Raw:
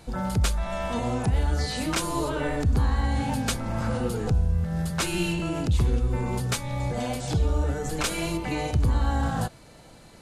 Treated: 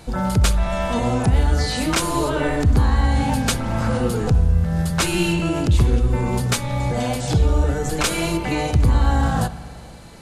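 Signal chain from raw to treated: spring tank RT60 2.2 s, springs 59 ms, chirp 50 ms, DRR 14 dB; trim +6.5 dB

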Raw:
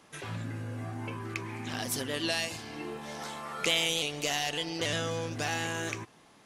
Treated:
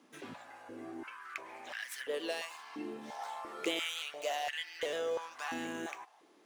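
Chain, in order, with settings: median filter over 3 samples; dynamic bell 5.1 kHz, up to -6 dB, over -49 dBFS, Q 1.7; step-sequenced high-pass 2.9 Hz 260–1800 Hz; trim -8.5 dB

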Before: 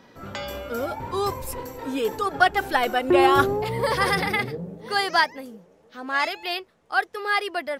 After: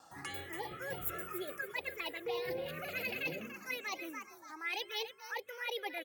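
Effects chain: gliding tape speed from 142% -> 116%; gate with hold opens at -50 dBFS; reverse; compression 5:1, threshold -31 dBFS, peak gain reduction 17 dB; reverse; high-pass 180 Hz 6 dB/octave; comb 2.4 ms, depth 44%; on a send: frequency-shifting echo 288 ms, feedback 37%, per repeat +38 Hz, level -9 dB; on the sum: touch-sensitive phaser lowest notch 360 Hz, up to 1.6 kHz, full sweep at -26.5 dBFS; treble shelf 12 kHz +9 dB; trim -4 dB; Opus 256 kbps 48 kHz

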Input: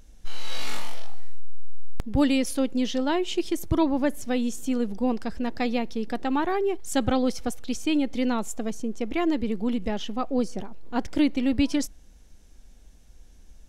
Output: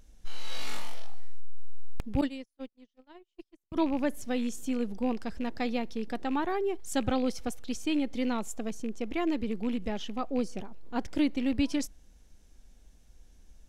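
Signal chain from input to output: rattle on loud lows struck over -31 dBFS, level -31 dBFS; 2.21–3.76 s: gate -19 dBFS, range -49 dB; trim -5 dB

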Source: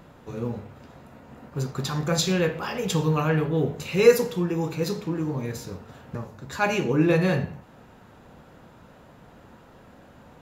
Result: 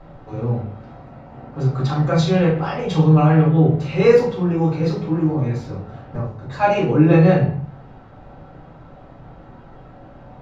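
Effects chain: distance through air 170 m; simulated room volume 130 m³, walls furnished, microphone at 5.3 m; trim -5.5 dB

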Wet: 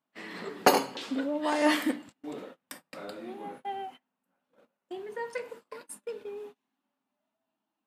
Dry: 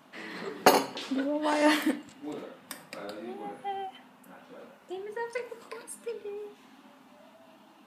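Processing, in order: gate -44 dBFS, range -28 dB; trim -1 dB

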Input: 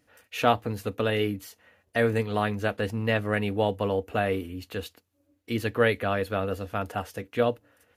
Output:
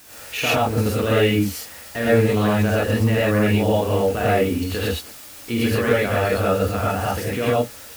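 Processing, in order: bass shelf 110 Hz +6.5 dB; in parallel at +2 dB: compression, threshold -33 dBFS, peak gain reduction 16.5 dB; on the sum: peak limiter -16 dBFS, peak gain reduction 10.5 dB; word length cut 8-bit, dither triangular; gated-style reverb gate 150 ms rising, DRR -7 dB

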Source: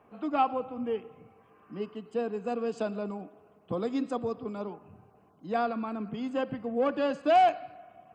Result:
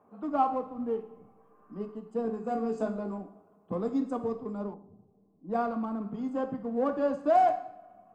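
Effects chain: FFT filter 130 Hz 0 dB, 190 Hz +8 dB, 480 Hz +5 dB, 1.1 kHz +7 dB, 2.7 kHz -10 dB, 7.3 kHz +3 dB; 2.23–3.18 s: flutter echo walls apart 3.1 m, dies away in 0.22 s; in parallel at -10.5 dB: hysteresis with a dead band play -22.5 dBFS; on the sum: two-slope reverb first 0.57 s, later 1.8 s, from -28 dB, DRR 6.5 dB; 4.74–5.91 s: level-controlled noise filter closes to 330 Hz, open at -21.5 dBFS; trim -9 dB

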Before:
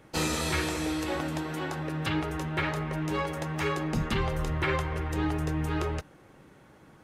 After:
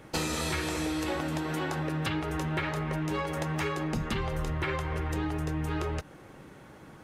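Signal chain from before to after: compression, threshold -33 dBFS, peak gain reduction 9.5 dB; trim +5 dB

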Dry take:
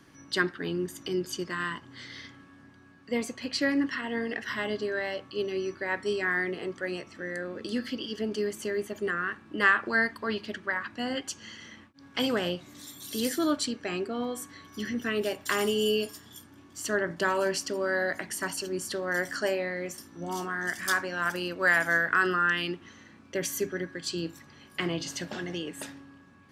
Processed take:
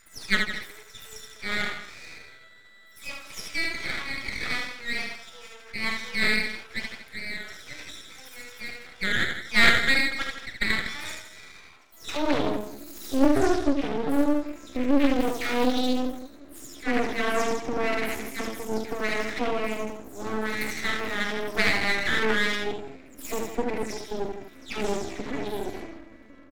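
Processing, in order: delay that grows with frequency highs early, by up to 256 ms; graphic EQ with 31 bands 160 Hz -3 dB, 250 Hz +10 dB, 2.5 kHz -6 dB, 4 kHz -6 dB, 8 kHz -11 dB; on a send: delay 161 ms -10.5 dB; on the sum: high-pass sweep 1.3 kHz -> 210 Hz, 11.34–12.60 s; early reflections 44 ms -9.5 dB, 76 ms -4 dB; pitch shift +3 st; dynamic bell 2.9 kHz, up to +5 dB, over -41 dBFS, Q 2.1; half-wave rectifier; loudspeaker Doppler distortion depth 0.44 ms; trim +2 dB

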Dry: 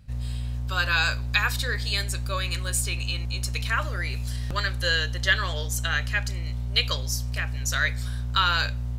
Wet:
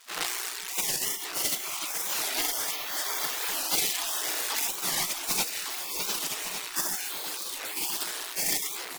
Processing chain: gated-style reverb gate 190 ms flat, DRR -7.5 dB; in parallel at -1.5 dB: peak limiter -11.5 dBFS, peak gain reduction 8.5 dB; on the sum: companded quantiser 4-bit; peaking EQ 570 Hz +6 dB 0.46 oct; level rider; reverb removal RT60 1.6 s; spectral gate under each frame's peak -30 dB weak; treble shelf 9.2 kHz -6 dB; one-sided clip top -25 dBFS; on a send: delay 1157 ms -9.5 dB; on the sum: warped record 45 rpm, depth 250 cents; trim +6.5 dB

